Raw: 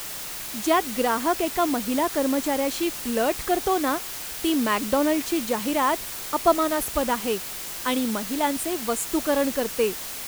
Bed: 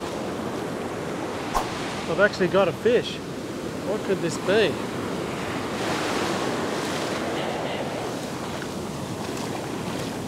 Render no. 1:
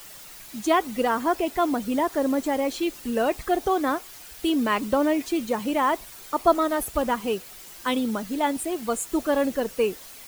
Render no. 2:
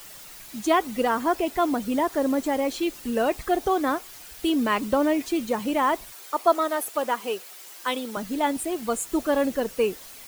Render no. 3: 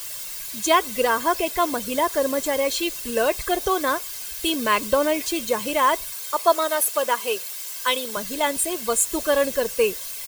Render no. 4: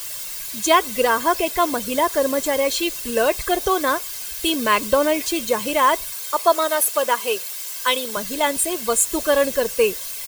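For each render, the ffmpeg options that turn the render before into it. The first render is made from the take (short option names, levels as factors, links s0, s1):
-af "afftdn=nr=11:nf=-34"
-filter_complex "[0:a]asettb=1/sr,asplit=3[s0][s1][s2];[s0]atrim=end=6.124[s3];[s1]atrim=start=6.12:end=8.17,asetpts=PTS-STARTPTS,afade=t=in:d=0.004:c=qsin,afade=t=out:st=2.046:d=0.004:c=qsin,highpass=400[s4];[s2]atrim=start=8.166[s5];[s3][s4]acrossfade=d=0.004:c1=hsin:c2=qsin[s6];[s6][s5]acrossfade=d=0.004:c1=qsin:c2=hsin"
-af "highshelf=f=2200:g=10.5,aecho=1:1:1.9:0.48"
-af "volume=1.33,alimiter=limit=0.708:level=0:latency=1"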